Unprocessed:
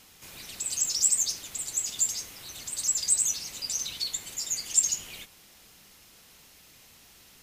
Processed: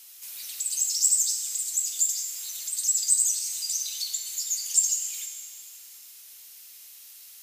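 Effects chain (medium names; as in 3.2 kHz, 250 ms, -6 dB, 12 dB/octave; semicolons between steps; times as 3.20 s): pre-emphasis filter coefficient 0.97; in parallel at +1 dB: compression, threshold -41 dBFS, peak gain reduction 22.5 dB; on the sum: plate-style reverb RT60 2.7 s, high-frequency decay 0.85×, DRR 3.5 dB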